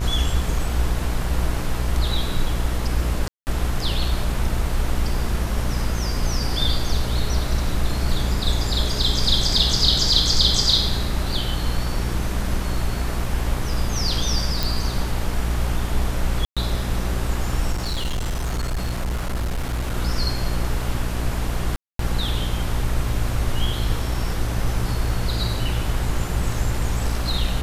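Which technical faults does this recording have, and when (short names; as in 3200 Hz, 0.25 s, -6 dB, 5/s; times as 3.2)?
buzz 60 Hz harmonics 38 -26 dBFS
3.28–3.47 gap 0.189 s
14.63 pop
16.45–16.57 gap 0.116 s
17.72–19.94 clipped -20.5 dBFS
21.76–21.99 gap 0.233 s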